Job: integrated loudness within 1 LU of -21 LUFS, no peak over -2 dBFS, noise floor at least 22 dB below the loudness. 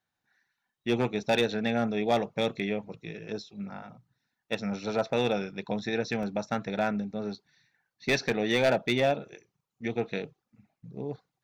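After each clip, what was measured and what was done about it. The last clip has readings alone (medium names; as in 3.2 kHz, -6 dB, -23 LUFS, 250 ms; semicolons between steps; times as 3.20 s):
clipped samples 0.2%; clipping level -17.0 dBFS; dropouts 1; longest dropout 1.8 ms; loudness -30.0 LUFS; peak level -17.0 dBFS; loudness target -21.0 LUFS
-> clip repair -17 dBFS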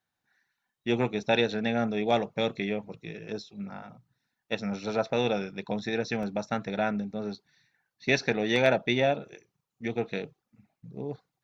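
clipped samples 0.0%; dropouts 1; longest dropout 1.8 ms
-> interpolate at 6.23 s, 1.8 ms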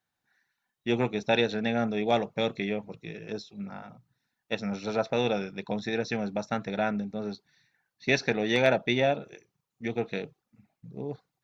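dropouts 0; loudness -29.5 LUFS; peak level -8.0 dBFS; loudness target -21.0 LUFS
-> trim +8.5 dB; peak limiter -2 dBFS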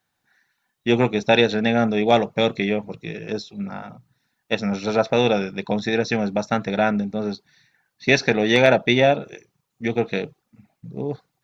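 loudness -21.0 LUFS; peak level -2.0 dBFS; noise floor -76 dBFS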